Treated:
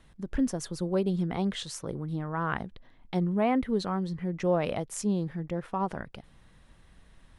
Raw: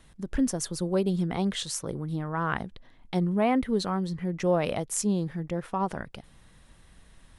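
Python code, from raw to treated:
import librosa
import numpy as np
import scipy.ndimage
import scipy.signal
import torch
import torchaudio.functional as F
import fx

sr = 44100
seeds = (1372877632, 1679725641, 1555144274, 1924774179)

y = fx.high_shelf(x, sr, hz=5800.0, db=-9.0)
y = F.gain(torch.from_numpy(y), -1.5).numpy()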